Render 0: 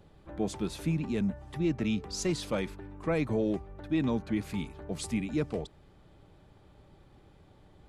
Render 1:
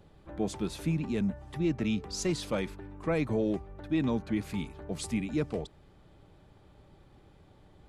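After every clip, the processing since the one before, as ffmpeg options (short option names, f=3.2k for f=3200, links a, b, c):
-af anull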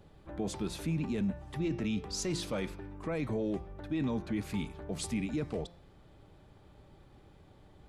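-af "bandreject=f=173.3:t=h:w=4,bandreject=f=346.6:t=h:w=4,bandreject=f=519.9:t=h:w=4,bandreject=f=693.2:t=h:w=4,bandreject=f=866.5:t=h:w=4,bandreject=f=1.0398k:t=h:w=4,bandreject=f=1.2131k:t=h:w=4,bandreject=f=1.3864k:t=h:w=4,bandreject=f=1.5597k:t=h:w=4,bandreject=f=1.733k:t=h:w=4,bandreject=f=1.9063k:t=h:w=4,bandreject=f=2.0796k:t=h:w=4,bandreject=f=2.2529k:t=h:w=4,bandreject=f=2.4262k:t=h:w=4,bandreject=f=2.5995k:t=h:w=4,bandreject=f=2.7728k:t=h:w=4,bandreject=f=2.9461k:t=h:w=4,bandreject=f=3.1194k:t=h:w=4,bandreject=f=3.2927k:t=h:w=4,bandreject=f=3.466k:t=h:w=4,bandreject=f=3.6393k:t=h:w=4,bandreject=f=3.8126k:t=h:w=4,bandreject=f=3.9859k:t=h:w=4,bandreject=f=4.1592k:t=h:w=4,bandreject=f=4.3325k:t=h:w=4,bandreject=f=4.5058k:t=h:w=4,bandreject=f=4.6791k:t=h:w=4,bandreject=f=4.8524k:t=h:w=4,bandreject=f=5.0257k:t=h:w=4,bandreject=f=5.199k:t=h:w=4,bandreject=f=5.3723k:t=h:w=4,bandreject=f=5.5456k:t=h:w=4,bandreject=f=5.7189k:t=h:w=4,bandreject=f=5.8922k:t=h:w=4,bandreject=f=6.0655k:t=h:w=4,alimiter=level_in=1.5dB:limit=-24dB:level=0:latency=1:release=10,volume=-1.5dB"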